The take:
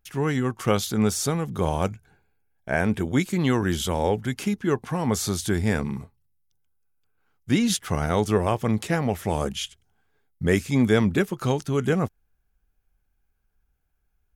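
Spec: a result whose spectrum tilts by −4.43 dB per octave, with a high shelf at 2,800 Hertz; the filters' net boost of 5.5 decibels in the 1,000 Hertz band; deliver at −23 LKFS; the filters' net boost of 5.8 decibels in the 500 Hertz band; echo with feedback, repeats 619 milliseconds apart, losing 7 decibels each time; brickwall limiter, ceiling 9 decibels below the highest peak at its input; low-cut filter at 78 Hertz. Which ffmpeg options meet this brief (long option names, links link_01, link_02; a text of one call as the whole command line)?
ffmpeg -i in.wav -af "highpass=78,equalizer=frequency=500:width_type=o:gain=6,equalizer=frequency=1000:width_type=o:gain=4,highshelf=frequency=2800:gain=7,alimiter=limit=-11dB:level=0:latency=1,aecho=1:1:619|1238|1857|2476|3095:0.447|0.201|0.0905|0.0407|0.0183,volume=0.5dB" out.wav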